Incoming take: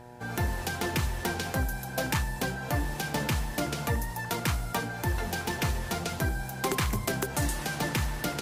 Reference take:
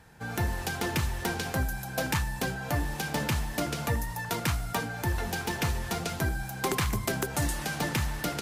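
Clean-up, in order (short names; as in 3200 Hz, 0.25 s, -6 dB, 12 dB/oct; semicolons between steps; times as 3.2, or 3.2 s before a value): de-hum 121.6 Hz, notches 8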